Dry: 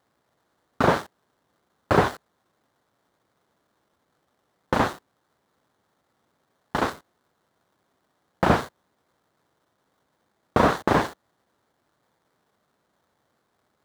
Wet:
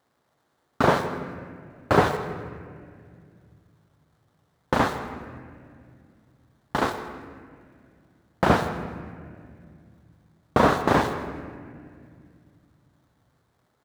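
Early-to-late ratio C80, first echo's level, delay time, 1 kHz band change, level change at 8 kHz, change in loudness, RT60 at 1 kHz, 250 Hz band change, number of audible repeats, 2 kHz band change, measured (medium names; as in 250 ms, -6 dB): 9.5 dB, -15.5 dB, 161 ms, +0.5 dB, +0.5 dB, -1.0 dB, 1.9 s, +1.0 dB, 2, +0.5 dB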